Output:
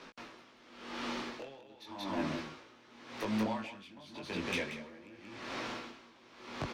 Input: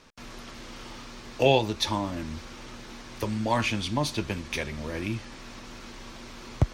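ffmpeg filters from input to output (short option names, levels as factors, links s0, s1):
-filter_complex "[0:a]acrossover=split=180 4400:gain=0.126 1 0.251[s0][s1][s2];[s0][s1][s2]amix=inputs=3:normalize=0,acompressor=threshold=0.02:ratio=12,flanger=delay=18:depth=4.3:speed=0.34,asoftclip=type=tanh:threshold=0.0168,asplit=2[s3][s4];[s4]aecho=0:1:183:0.668[s5];[s3][s5]amix=inputs=2:normalize=0,aeval=exprs='val(0)*pow(10,-22*(0.5-0.5*cos(2*PI*0.89*n/s))/20)':c=same,volume=2.82"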